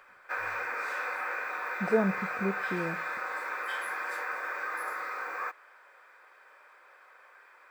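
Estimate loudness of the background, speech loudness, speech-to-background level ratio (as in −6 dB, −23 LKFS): −34.0 LKFS, −32.5 LKFS, 1.5 dB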